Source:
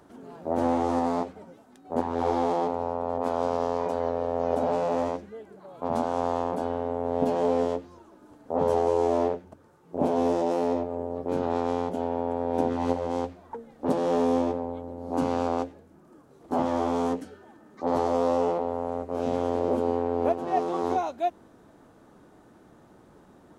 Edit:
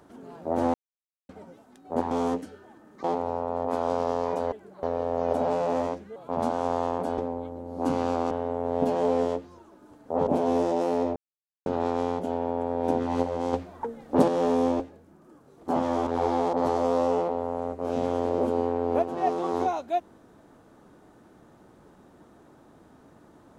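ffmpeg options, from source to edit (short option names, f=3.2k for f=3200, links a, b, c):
-filter_complex "[0:a]asplit=18[a][b][c][d][e][f][g][h][i][j][k][l][m][n][o][p][q][r];[a]atrim=end=0.74,asetpts=PTS-STARTPTS,afade=t=out:st=0.736:d=0.004:c=hsin[s];[b]atrim=start=0.74:end=1.29,asetpts=PTS-STARTPTS,volume=0[t];[c]atrim=start=1.29:end=2.112,asetpts=PTS-STARTPTS,afade=t=in:d=0.004:c=hsin[u];[d]atrim=start=16.898:end=17.832[v];[e]atrim=start=2.568:end=4.052[w];[f]atrim=start=5.378:end=5.692[x];[g]atrim=start=4.048:end=5.382[y];[h]atrim=start=5.688:end=6.712[z];[i]atrim=start=14.498:end=15.632[aa];[j]atrim=start=6.708:end=8.672[ab];[k]atrim=start=9.968:end=10.86,asetpts=PTS-STARTPTS,afade=t=out:st=0.888:d=0.004:c=hsin[ac];[l]atrim=start=10.86:end=11.36,asetpts=PTS-STARTPTS,volume=0[ad];[m]atrim=start=11.36:end=13.232,asetpts=PTS-STARTPTS,afade=t=in:d=0.004:c=hsin[ae];[n]atrim=start=13.228:end=13.982,asetpts=PTS-STARTPTS,volume=5.5dB[af];[o]atrim=start=13.978:end=14.502[ag];[p]atrim=start=15.628:end=16.902[ah];[q]atrim=start=2.108:end=2.572[ai];[r]atrim=start=17.828[aj];[s][t][u]concat=n=3:v=0:a=1[ak];[ak][v]acrossfade=d=0.004:c1=hsin:c2=hsin[al];[al][w]acrossfade=d=0.004:c1=hsin:c2=hsin[am];[am][x]acrossfade=d=0.004:c1=hsin:c2=hsin[an];[an][y]acrossfade=d=0.004:c1=hsin:c2=hsin[ao];[ao][z]acrossfade=d=0.004:c1=hsin:c2=hsin[ap];[ap][aa]acrossfade=d=0.004:c1=hsin:c2=hsin[aq];[aq][ab]acrossfade=d=0.004:c1=hsin:c2=hsin[ar];[ac][ad][ae]concat=n=3:v=0:a=1[as];[ar][as]acrossfade=d=0.004:c1=hsin:c2=hsin[at];[at][af]acrossfade=d=0.004:c1=hsin:c2=hsin[au];[au][ag]acrossfade=d=0.004:c1=hsin:c2=hsin[av];[av][ah]acrossfade=d=0.004:c1=hsin:c2=hsin[aw];[aw][ai]acrossfade=d=0.004:c1=hsin:c2=hsin[ax];[ax][aj]acrossfade=d=0.004:c1=hsin:c2=hsin"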